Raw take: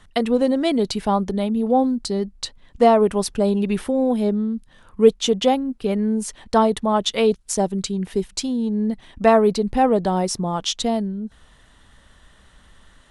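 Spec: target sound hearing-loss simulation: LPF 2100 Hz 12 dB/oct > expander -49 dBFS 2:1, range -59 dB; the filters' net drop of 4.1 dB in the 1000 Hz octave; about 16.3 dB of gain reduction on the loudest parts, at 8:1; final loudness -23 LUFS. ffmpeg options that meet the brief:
-af "equalizer=f=1k:t=o:g=-6,acompressor=threshold=-25dB:ratio=8,lowpass=2.1k,agate=range=-59dB:threshold=-49dB:ratio=2,volume=7.5dB"

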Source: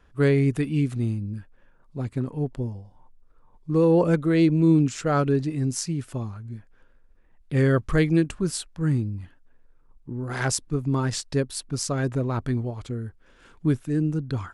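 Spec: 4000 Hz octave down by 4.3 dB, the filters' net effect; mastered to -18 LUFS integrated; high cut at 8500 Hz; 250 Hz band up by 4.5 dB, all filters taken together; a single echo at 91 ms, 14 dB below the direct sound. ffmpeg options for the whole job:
-af "lowpass=8.5k,equalizer=f=250:t=o:g=6.5,equalizer=f=4k:t=o:g=-5.5,aecho=1:1:91:0.2,volume=3.5dB"

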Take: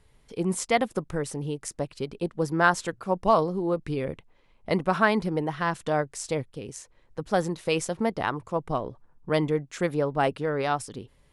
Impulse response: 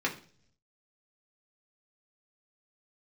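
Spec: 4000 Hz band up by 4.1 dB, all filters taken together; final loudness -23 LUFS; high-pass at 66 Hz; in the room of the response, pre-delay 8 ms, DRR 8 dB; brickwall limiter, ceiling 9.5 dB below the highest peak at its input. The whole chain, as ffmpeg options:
-filter_complex "[0:a]highpass=66,equalizer=f=4k:t=o:g=5.5,alimiter=limit=-15dB:level=0:latency=1,asplit=2[a][b];[1:a]atrim=start_sample=2205,adelay=8[c];[b][c]afir=irnorm=-1:irlink=0,volume=-16.5dB[d];[a][d]amix=inputs=2:normalize=0,volume=5.5dB"

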